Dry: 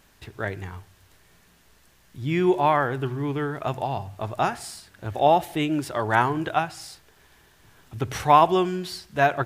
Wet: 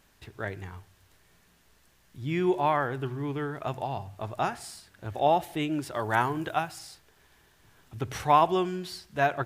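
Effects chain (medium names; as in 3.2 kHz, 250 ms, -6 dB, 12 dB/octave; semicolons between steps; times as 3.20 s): 5.94–6.79 s: treble shelf 9.7 kHz +11 dB; trim -5 dB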